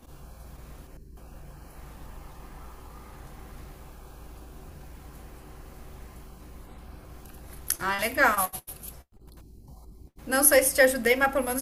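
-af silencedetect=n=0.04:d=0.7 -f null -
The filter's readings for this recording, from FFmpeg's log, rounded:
silence_start: 0.00
silence_end: 7.69 | silence_duration: 7.69
silence_start: 8.89
silence_end: 10.30 | silence_duration: 1.41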